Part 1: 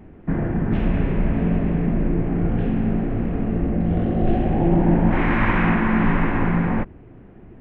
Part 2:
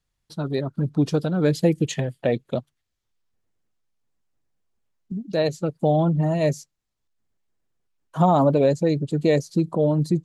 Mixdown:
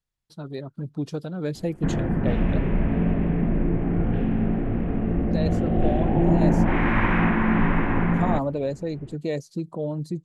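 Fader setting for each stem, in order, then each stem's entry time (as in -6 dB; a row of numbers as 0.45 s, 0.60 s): -2.0 dB, -8.5 dB; 1.55 s, 0.00 s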